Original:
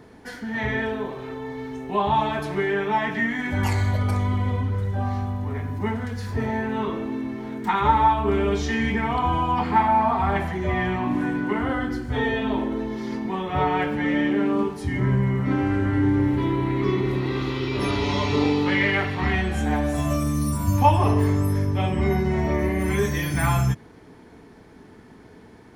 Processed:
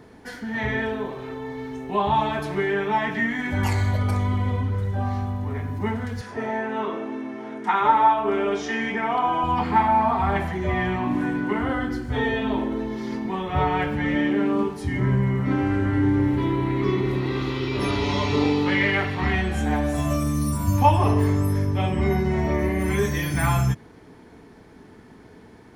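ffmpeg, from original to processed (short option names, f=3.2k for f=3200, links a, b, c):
-filter_complex "[0:a]asettb=1/sr,asplit=3[a][b][c];[a]atrim=end=6.214[d];[b]atrim=start=6.21:end=9.44,asetpts=PTS-STARTPTS,afade=t=in:d=0.004:c=qsin,afade=t=out:st=3.226:d=0.004:c=qsin,highpass=270,equalizer=f=680:t=q:w=4:g=5,equalizer=f=1.4k:t=q:w=4:g=3,equalizer=f=4.2k:t=q:w=4:g=-7,equalizer=f=7.7k:t=q:w=4:g=-6,lowpass=f=9.7k:w=0.5412,lowpass=f=9.7k:w=1.3066[e];[c]atrim=start=9.436[f];[d][e]acrossfade=d=0.004:c1=hsin:c2=qsin[g];[g][f]acrossfade=d=0.004:c1=qsin:c2=hsin,asettb=1/sr,asplit=3[h][i][j];[h]atrim=end=13.244[k];[i]atrim=start=13.24:end=14.16,asetpts=PTS-STARTPTS,afade=t=in:d=0.004:c=qsin,afade=t=out:st=0.916:d=0.004:c=qsin,asubboost=boost=9:cutoff=150[l];[j]atrim=start=14.156[m];[k][l]acrossfade=d=0.004:c1=hsin:c2=qsin[n];[n][m]acrossfade=d=0.004:c1=qsin:c2=hsin"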